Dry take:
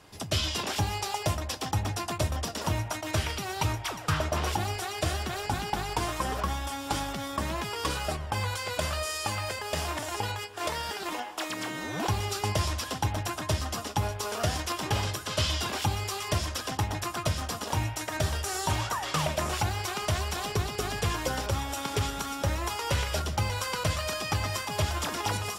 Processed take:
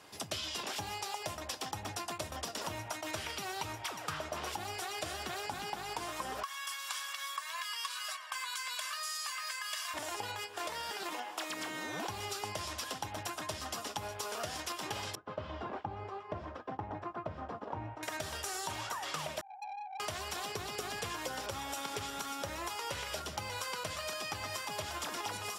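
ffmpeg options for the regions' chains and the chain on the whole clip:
-filter_complex "[0:a]asettb=1/sr,asplit=3[s0][s1][s2];[s0]atrim=end=6.434[s3];[s1]atrim=start=6.43:end=9.94,asetpts=PTS-STARTPTS,afade=t=in:d=0.004:c=qsin,afade=t=out:st=3.506:d=0.004:c=qsin,highpass=f=1100:w=0.5412,highpass=f=1100:w=1.3066,aecho=1:1:1.8:0.76,atrim=end_sample=154791[s4];[s2]atrim=start=9.936[s5];[s3][s4]acrossfade=d=0.004:c1=hsin:c2=qsin[s6];[s6][s5]acrossfade=d=0.004:c1=qsin:c2=hsin,asettb=1/sr,asplit=3[s7][s8][s9];[s7]atrim=end=15.154[s10];[s8]atrim=start=15.15:end=18.03,asetpts=PTS-STARTPTS,afade=t=in:d=0.004:c=qsin,afade=t=out:st=2.876:d=0.004:c=qsin,lowpass=1000,agate=range=0.0224:threshold=0.0158:ratio=3:release=100:detection=peak[s11];[s9]atrim=start=18.026[s12];[s10][s11]acrossfade=d=0.004:c1=hsin:c2=qsin[s13];[s13][s12]acrossfade=d=0.004:c1=qsin:c2=hsin,asettb=1/sr,asplit=3[s14][s15][s16];[s14]atrim=end=19.414[s17];[s15]atrim=start=19.41:end=20,asetpts=PTS-STARTPTS,afade=t=in:d=0.004:c=qsin,afade=t=out:st=0.586:d=0.004:c=qsin,aeval=exprs='val(0)+0.5*0.0299*sgn(val(0))':c=same,asuperpass=centerf=800:order=8:qfactor=7.7,aeval=exprs='(tanh(89.1*val(0)+0.1)-tanh(0.1))/89.1':c=same[s18];[s16]atrim=start=19.996[s19];[s17][s18]acrossfade=d=0.004:c1=hsin:c2=qsin[s20];[s20][s19]acrossfade=d=0.004:c1=qsin:c2=hsin,highpass=f=340:p=1,acompressor=threshold=0.0158:ratio=6"

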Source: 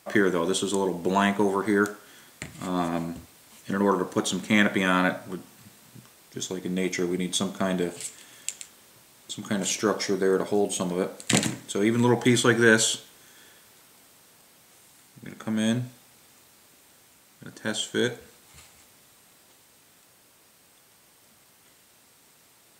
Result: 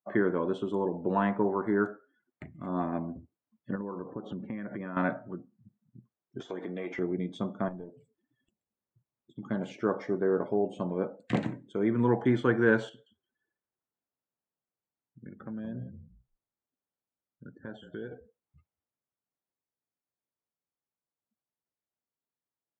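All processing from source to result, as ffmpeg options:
-filter_complex "[0:a]asettb=1/sr,asplit=3[s0][s1][s2];[s0]atrim=end=3.754[s3];[s1]atrim=start=3.75:end=4.97,asetpts=PTS-STARTPTS,afade=t=in:d=0.004:c=qsin,afade=t=out:st=1.216:d=0.004:c=qsin,highpass=f=200:p=1,aemphasis=mode=reproduction:type=bsi,acompressor=threshold=0.0398:ratio=12:attack=3.2:release=140:knee=1:detection=peak[s4];[s2]atrim=start=4.966[s5];[s3][s4]acrossfade=d=0.004:c1=hsin:c2=qsin[s6];[s6][s5]acrossfade=d=0.004:c1=qsin:c2=hsin,asettb=1/sr,asplit=3[s7][s8][s9];[s7]atrim=end=6.404[s10];[s8]atrim=start=6.4:end=6.99,asetpts=PTS-STARTPTS,afade=t=in:d=0.004:c=qsin,afade=t=out:st=0.586:d=0.004:c=qsin,equalizer=f=76:w=0.91:g=-12,acompressor=threshold=0.0158:ratio=4:attack=3.2:release=140:knee=1:detection=peak,asplit=2[s11][s12];[s12]highpass=f=720:p=1,volume=11.2,asoftclip=type=tanh:threshold=0.158[s13];[s11][s13]amix=inputs=2:normalize=0,lowpass=f=6500:p=1,volume=0.501[s14];[s9]atrim=start=6.986[s15];[s10][s14]acrossfade=d=0.004:c1=hsin:c2=qsin[s16];[s16][s15]acrossfade=d=0.004:c1=qsin:c2=hsin,asettb=1/sr,asplit=3[s17][s18][s19];[s17]atrim=end=7.684[s20];[s18]atrim=start=7.68:end=9.36,asetpts=PTS-STARTPTS,afade=t=in:d=0.004:c=qsin,afade=t=out:st=1.676:d=0.004:c=qsin,lowshelf=f=110:g=7,acrossover=split=930|6400[s21][s22][s23];[s21]acompressor=threshold=0.0178:ratio=4[s24];[s22]acompressor=threshold=0.00355:ratio=4[s25];[s23]acompressor=threshold=0.00316:ratio=4[s26];[s24][s25][s26]amix=inputs=3:normalize=0,aeval=exprs='clip(val(0),-1,0.015)':c=same[s27];[s19]atrim=start=9.356[s28];[s20][s27]acrossfade=d=0.004:c1=hsin:c2=qsin[s29];[s29][s28]acrossfade=d=0.004:c1=qsin:c2=hsin,asettb=1/sr,asplit=3[s30][s31][s32];[s30]atrim=end=12.894[s33];[s31]atrim=start=12.89:end=18.14,asetpts=PTS-STARTPTS,afade=t=in:d=0.004:c=qsin,afade=t=out:st=5.246:d=0.004:c=qsin,acompressor=threshold=0.0282:ratio=4:attack=3.2:release=140:knee=1:detection=peak,highshelf=f=5000:g=-5.5,asplit=5[s34][s35][s36][s37][s38];[s35]adelay=173,afreqshift=-35,volume=0.335[s39];[s36]adelay=346,afreqshift=-70,volume=0.111[s40];[s37]adelay=519,afreqshift=-105,volume=0.0363[s41];[s38]adelay=692,afreqshift=-140,volume=0.012[s42];[s34][s39][s40][s41][s42]amix=inputs=5:normalize=0,atrim=end_sample=231525[s43];[s32]atrim=start=18.136[s44];[s33][s43]acrossfade=d=0.004:c1=hsin:c2=qsin[s45];[s45][s44]acrossfade=d=0.004:c1=qsin:c2=hsin,afftdn=nr=33:nf=-42,lowpass=1400,volume=0.631"

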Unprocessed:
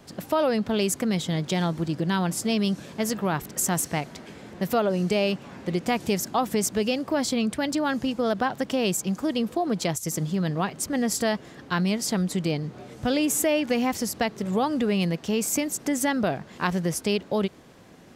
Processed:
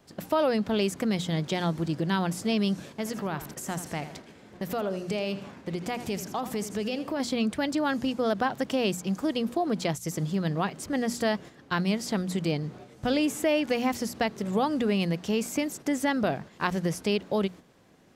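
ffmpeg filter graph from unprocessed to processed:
-filter_complex "[0:a]asettb=1/sr,asplit=3[s0][s1][s2];[s0]atrim=end=2.924[s3];[s1]atrim=start=2.92:end=7.2,asetpts=PTS-STARTPTS,afade=t=in:d=0.004:c=qsin,afade=t=out:st=4.276:d=0.004:c=qsin,acompressor=threshold=0.0447:ratio=2.5:attack=3.2:release=140:knee=1:detection=peak,asplit=2[s4][s5];[s5]adelay=81,lowpass=f=4600:p=1,volume=0.251,asplit=2[s6][s7];[s7]adelay=81,lowpass=f=4600:p=1,volume=0.38,asplit=2[s8][s9];[s9]adelay=81,lowpass=f=4600:p=1,volume=0.38,asplit=2[s10][s11];[s11]adelay=81,lowpass=f=4600:p=1,volume=0.38[s12];[s4][s6][s8][s10][s12]amix=inputs=5:normalize=0,atrim=end_sample=188748[s13];[s2]atrim=start=7.196[s14];[s3][s13]acrossfade=d=0.004:c1=hsin:c2=qsin[s15];[s15][s14]acrossfade=d=0.004:c1=qsin:c2=hsin,acrossover=split=4100[s16][s17];[s17]acompressor=threshold=0.0178:ratio=4:attack=1:release=60[s18];[s16][s18]amix=inputs=2:normalize=0,agate=range=0.447:threshold=0.01:ratio=16:detection=peak,bandreject=f=60:t=h:w=6,bandreject=f=120:t=h:w=6,bandreject=f=180:t=h:w=6,bandreject=f=240:t=h:w=6,volume=0.841"

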